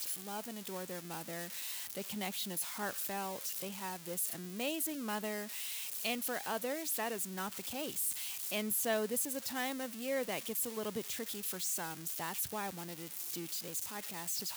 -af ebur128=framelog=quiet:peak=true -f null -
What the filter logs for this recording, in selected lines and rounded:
Integrated loudness:
  I:         -37.2 LUFS
  Threshold: -47.2 LUFS
Loudness range:
  LRA:         3.4 LU
  Threshold: -56.8 LUFS
  LRA low:   -38.7 LUFS
  LRA high:  -35.3 LUFS
True peak:
  Peak:      -22.4 dBFS